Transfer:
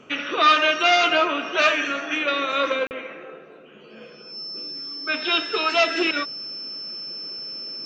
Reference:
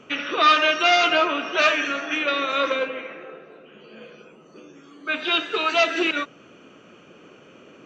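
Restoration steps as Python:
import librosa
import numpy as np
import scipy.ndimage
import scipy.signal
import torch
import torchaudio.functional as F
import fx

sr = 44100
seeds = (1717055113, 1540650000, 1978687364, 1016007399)

y = fx.notch(x, sr, hz=5300.0, q=30.0)
y = fx.fix_interpolate(y, sr, at_s=(2.87,), length_ms=39.0)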